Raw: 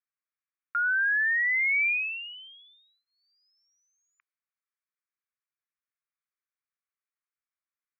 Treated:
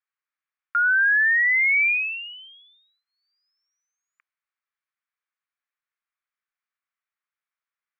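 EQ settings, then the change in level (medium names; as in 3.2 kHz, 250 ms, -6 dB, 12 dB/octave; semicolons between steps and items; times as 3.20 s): high-pass 980 Hz; low-pass 2.6 kHz 12 dB/octave; +7.5 dB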